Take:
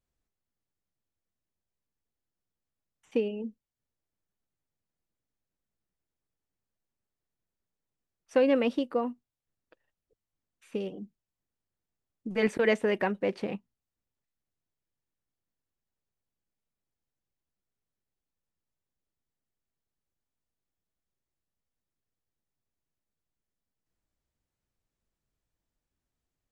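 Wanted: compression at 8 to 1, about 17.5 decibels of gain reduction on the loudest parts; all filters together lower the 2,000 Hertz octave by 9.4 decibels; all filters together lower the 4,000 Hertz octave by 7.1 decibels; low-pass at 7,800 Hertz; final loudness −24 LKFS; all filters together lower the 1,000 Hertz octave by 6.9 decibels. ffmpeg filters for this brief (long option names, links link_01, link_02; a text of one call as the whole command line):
ffmpeg -i in.wav -af "lowpass=7800,equalizer=frequency=1000:width_type=o:gain=-8.5,equalizer=frequency=2000:width_type=o:gain=-7.5,equalizer=frequency=4000:width_type=o:gain=-5.5,acompressor=threshold=-40dB:ratio=8,volume=21.5dB" out.wav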